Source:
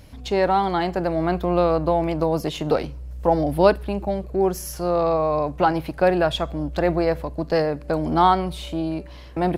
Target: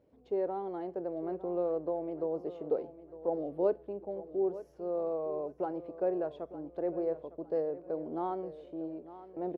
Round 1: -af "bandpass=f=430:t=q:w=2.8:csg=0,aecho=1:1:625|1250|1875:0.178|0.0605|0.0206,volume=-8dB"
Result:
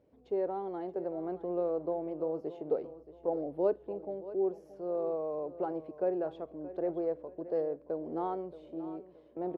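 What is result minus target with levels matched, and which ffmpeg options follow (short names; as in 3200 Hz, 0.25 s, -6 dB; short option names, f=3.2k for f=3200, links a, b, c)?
echo 0.28 s early
-af "bandpass=f=430:t=q:w=2.8:csg=0,aecho=1:1:905|1810|2715:0.178|0.0605|0.0206,volume=-8dB"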